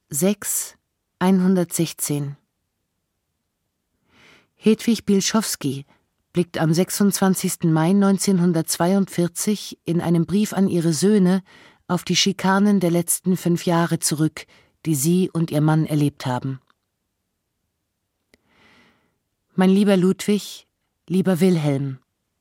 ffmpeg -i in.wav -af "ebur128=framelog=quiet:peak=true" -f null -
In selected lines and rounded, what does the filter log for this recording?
Integrated loudness:
  I:         -20.0 LUFS
  Threshold: -30.9 LUFS
Loudness range:
  LRA:         7.0 LU
  Threshold: -41.5 LUFS
  LRA low:   -26.3 LUFS
  LRA high:  -19.3 LUFS
True peak:
  Peak:       -5.4 dBFS